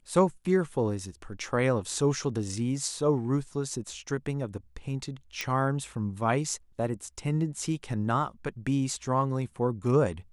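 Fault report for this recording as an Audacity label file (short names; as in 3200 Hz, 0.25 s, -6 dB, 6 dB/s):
5.410000	5.410000	pop -15 dBFS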